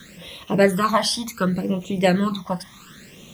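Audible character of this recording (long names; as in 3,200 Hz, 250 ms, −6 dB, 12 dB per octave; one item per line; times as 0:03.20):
a quantiser's noise floor 10 bits, dither triangular
phaser sweep stages 12, 0.68 Hz, lowest notch 420–1,600 Hz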